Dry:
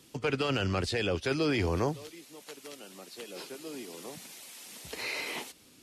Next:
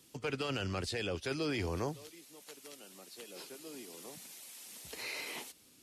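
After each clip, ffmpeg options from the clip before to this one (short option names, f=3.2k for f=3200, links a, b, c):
-af "highshelf=f=6k:g=7,volume=-7dB"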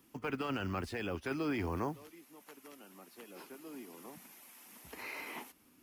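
-af "acrusher=bits=7:mode=log:mix=0:aa=0.000001,equalizer=f=125:t=o:w=1:g=-6,equalizer=f=250:t=o:w=1:g=4,equalizer=f=500:t=o:w=1:g=-6,equalizer=f=1k:t=o:w=1:g=4,equalizer=f=4k:t=o:w=1:g=-11,equalizer=f=8k:t=o:w=1:g=-11,volume=1.5dB"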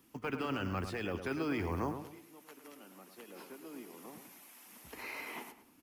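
-filter_complex "[0:a]asplit=2[a][b];[b]adelay=106,lowpass=f=2.2k:p=1,volume=-8dB,asplit=2[c][d];[d]adelay=106,lowpass=f=2.2k:p=1,volume=0.35,asplit=2[e][f];[f]adelay=106,lowpass=f=2.2k:p=1,volume=0.35,asplit=2[g][h];[h]adelay=106,lowpass=f=2.2k:p=1,volume=0.35[i];[a][c][e][g][i]amix=inputs=5:normalize=0"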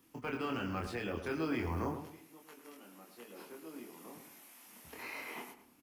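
-filter_complex "[0:a]asplit=2[a][b];[b]adelay=25,volume=-3dB[c];[a][c]amix=inputs=2:normalize=0,volume=-2.5dB"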